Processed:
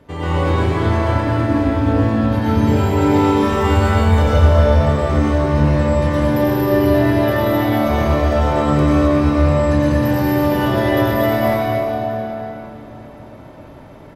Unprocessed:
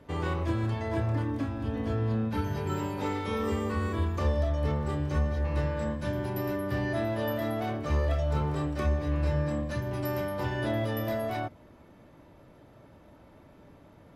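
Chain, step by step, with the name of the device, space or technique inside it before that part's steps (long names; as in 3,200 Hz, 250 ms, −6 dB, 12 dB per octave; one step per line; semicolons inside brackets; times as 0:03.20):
0:03.52–0:04.29: comb filter 1.4 ms, depth 79%
cave (single-tap delay 262 ms −8 dB; convolution reverb RT60 3.7 s, pre-delay 81 ms, DRR −9 dB)
level +5 dB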